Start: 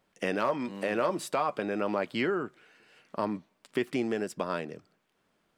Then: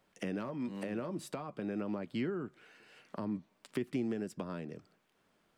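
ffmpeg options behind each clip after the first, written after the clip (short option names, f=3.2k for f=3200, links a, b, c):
-filter_complex "[0:a]acrossover=split=290[a][b];[b]acompressor=threshold=-43dB:ratio=6[c];[a][c]amix=inputs=2:normalize=0"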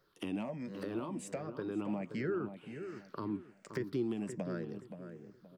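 -filter_complex "[0:a]afftfilt=real='re*pow(10,14/40*sin(2*PI*(0.58*log(max(b,1)*sr/1024/100)/log(2)-(-1.3)*(pts-256)/sr)))':imag='im*pow(10,14/40*sin(2*PI*(0.58*log(max(b,1)*sr/1024/100)/log(2)-(-1.3)*(pts-256)/sr)))':win_size=1024:overlap=0.75,asplit=2[a][b];[b]adelay=524,lowpass=f=1.6k:p=1,volume=-8.5dB,asplit=2[c][d];[d]adelay=524,lowpass=f=1.6k:p=1,volume=0.32,asplit=2[e][f];[f]adelay=524,lowpass=f=1.6k:p=1,volume=0.32,asplit=2[g][h];[h]adelay=524,lowpass=f=1.6k:p=1,volume=0.32[i];[a][c][e][g][i]amix=inputs=5:normalize=0,volume=-2.5dB"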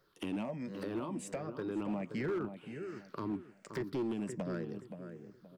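-af "asoftclip=type=hard:threshold=-31.5dB,volume=1dB"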